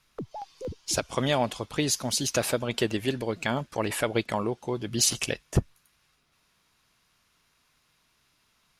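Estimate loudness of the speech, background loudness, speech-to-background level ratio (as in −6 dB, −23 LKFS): −28.0 LKFS, −41.0 LKFS, 13.0 dB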